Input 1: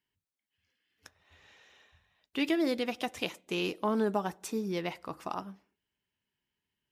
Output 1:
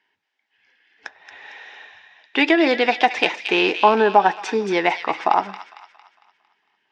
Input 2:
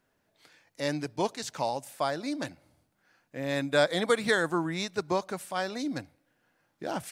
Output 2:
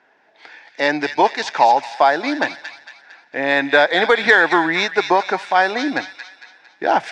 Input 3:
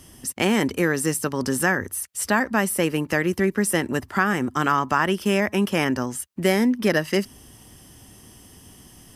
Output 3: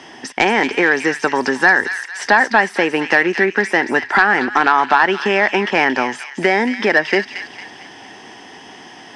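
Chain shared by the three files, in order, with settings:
compression 3:1, threshold -26 dBFS; cabinet simulation 480–4300 Hz, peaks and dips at 550 Hz -6 dB, 830 Hz +5 dB, 1.2 kHz -7 dB, 1.7 kHz +3 dB, 3 kHz -6 dB, 4.2 kHz -7 dB; sine folder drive 4 dB, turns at -13.5 dBFS; feedback echo behind a high-pass 227 ms, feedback 45%, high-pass 2 kHz, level -6.5 dB; peak normalisation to -1.5 dBFS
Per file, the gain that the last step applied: +12.5 dB, +12.0 dB, +11.0 dB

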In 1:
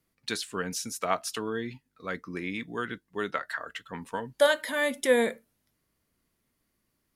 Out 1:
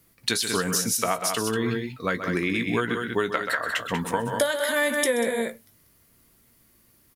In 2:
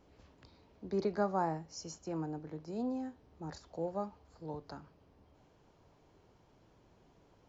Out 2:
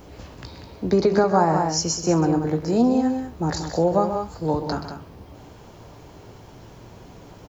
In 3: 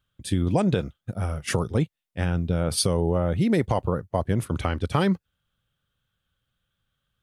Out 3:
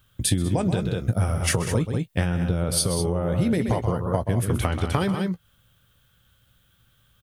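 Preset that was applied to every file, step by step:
treble shelf 9.7 kHz +11 dB; on a send: loudspeakers at several distances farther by 44 m -11 dB, 65 m -9 dB; on the sum: compression 10:1, threshold -33 dBFS; peaking EQ 99 Hz +3.5 dB 0.77 oct; doubling 17 ms -11.5 dB; peak normalisation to -6 dBFS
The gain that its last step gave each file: +11.5 dB, +19.5 dB, +12.5 dB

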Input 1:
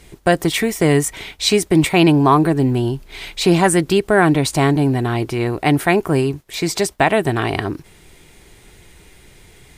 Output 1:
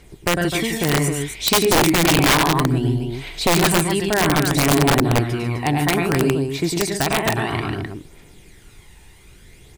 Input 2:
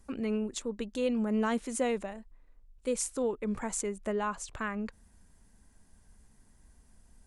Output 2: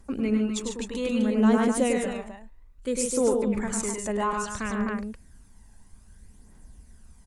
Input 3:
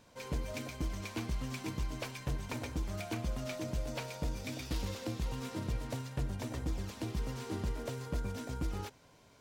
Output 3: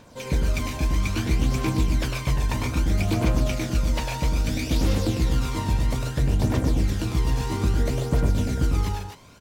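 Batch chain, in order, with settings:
on a send: loudspeakers at several distances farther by 35 m -4 dB, 49 m -7 dB, 88 m -7 dB; on the sum: phaser 0.61 Hz, delay 1.2 ms, feedback 41%; integer overflow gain 3.5 dB; peak normalisation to -9 dBFS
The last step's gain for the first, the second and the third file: -5.5 dB, +2.5 dB, +9.0 dB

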